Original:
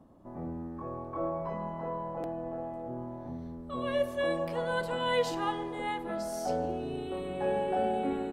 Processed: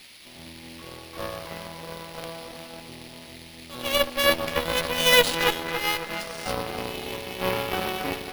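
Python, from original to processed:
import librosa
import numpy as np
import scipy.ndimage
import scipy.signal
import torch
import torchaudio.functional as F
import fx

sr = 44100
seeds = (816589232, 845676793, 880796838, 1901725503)

p1 = fx.dynamic_eq(x, sr, hz=510.0, q=1.8, threshold_db=-40.0, ratio=4.0, max_db=5)
p2 = fx.quant_dither(p1, sr, seeds[0], bits=6, dither='triangular')
p3 = p1 + (p2 * librosa.db_to_amplitude(-11.0))
p4 = fx.band_shelf(p3, sr, hz=3100.0, db=16.0, octaves=1.7)
p5 = np.repeat(scipy.signal.resample_poly(p4, 1, 3), 3)[:len(p4)]
p6 = p5 + fx.echo_bbd(p5, sr, ms=279, stages=4096, feedback_pct=64, wet_db=-6, dry=0)
p7 = fx.cheby_harmonics(p6, sr, harmonics=(3, 7, 8), levels_db=(-27, -21, -21), full_scale_db=-4.0)
y = p7 * librosa.db_to_amplitude(2.5)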